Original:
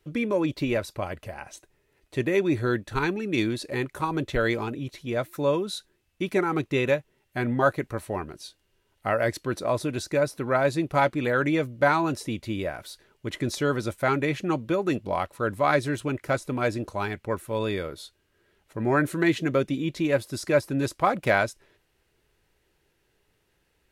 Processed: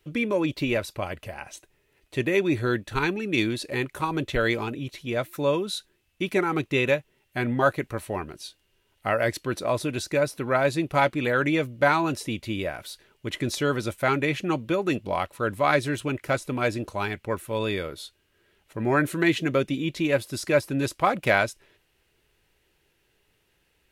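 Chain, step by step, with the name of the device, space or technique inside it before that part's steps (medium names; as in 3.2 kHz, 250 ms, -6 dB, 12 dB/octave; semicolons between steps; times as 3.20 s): presence and air boost (peaking EQ 2.8 kHz +5 dB 0.9 oct; treble shelf 9.2 kHz +4.5 dB)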